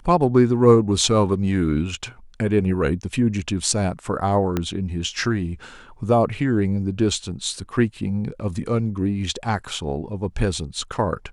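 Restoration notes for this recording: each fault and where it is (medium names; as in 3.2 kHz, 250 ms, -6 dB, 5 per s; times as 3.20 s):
4.57 s: pop -9 dBFS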